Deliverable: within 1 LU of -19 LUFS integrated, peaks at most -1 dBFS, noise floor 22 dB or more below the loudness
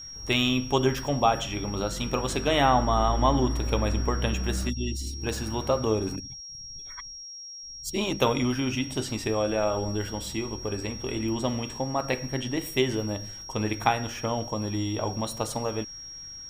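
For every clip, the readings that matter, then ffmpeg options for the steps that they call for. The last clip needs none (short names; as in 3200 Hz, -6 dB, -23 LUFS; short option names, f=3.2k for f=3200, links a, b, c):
steady tone 5600 Hz; tone level -39 dBFS; loudness -27.5 LUFS; peak -5.5 dBFS; loudness target -19.0 LUFS
-> -af "bandreject=f=5.6k:w=30"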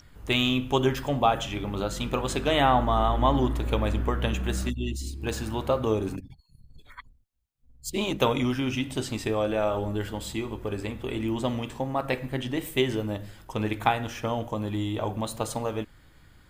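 steady tone none; loudness -27.5 LUFS; peak -5.5 dBFS; loudness target -19.0 LUFS
-> -af "volume=8.5dB,alimiter=limit=-1dB:level=0:latency=1"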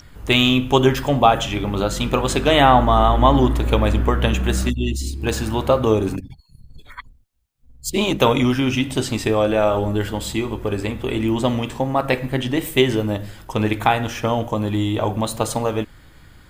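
loudness -19.5 LUFS; peak -1.0 dBFS; noise floor -48 dBFS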